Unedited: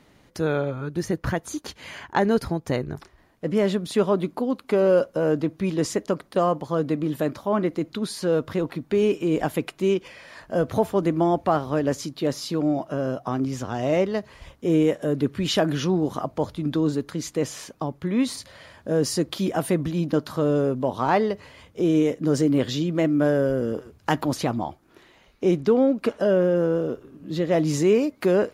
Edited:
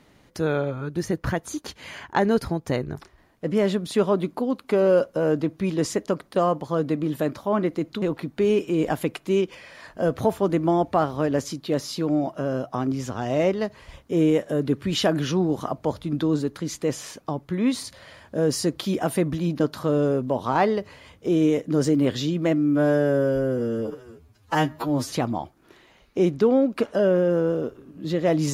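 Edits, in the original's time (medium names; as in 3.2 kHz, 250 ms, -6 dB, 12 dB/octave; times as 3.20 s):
8.02–8.55 s: delete
23.11–24.38 s: stretch 2×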